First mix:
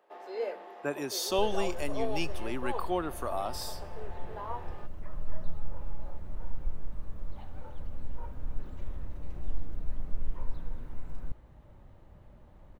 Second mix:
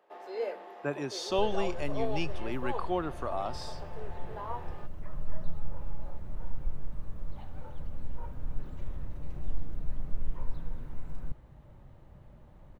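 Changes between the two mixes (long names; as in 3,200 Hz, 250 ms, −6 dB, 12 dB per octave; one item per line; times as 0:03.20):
speech: add high-frequency loss of the air 96 metres
master: add parametric band 140 Hz +6 dB 0.46 octaves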